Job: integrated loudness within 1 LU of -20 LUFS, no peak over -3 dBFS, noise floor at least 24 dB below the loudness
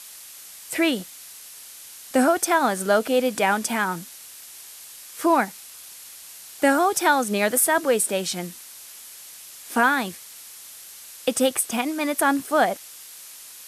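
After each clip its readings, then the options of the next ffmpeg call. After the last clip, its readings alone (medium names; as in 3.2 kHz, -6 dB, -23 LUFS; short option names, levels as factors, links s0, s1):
noise floor -43 dBFS; noise floor target -46 dBFS; loudness -22.0 LUFS; peak level -6.0 dBFS; loudness target -20.0 LUFS
-> -af "afftdn=nr=6:nf=-43"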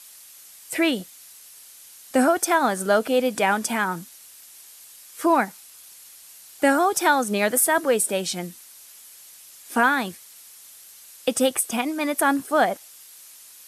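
noise floor -47 dBFS; loudness -22.0 LUFS; peak level -6.0 dBFS; loudness target -20.0 LUFS
-> -af "volume=1.26"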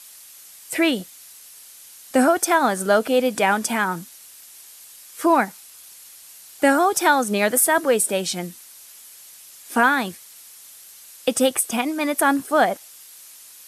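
loudness -20.0 LUFS; peak level -4.0 dBFS; noise floor -45 dBFS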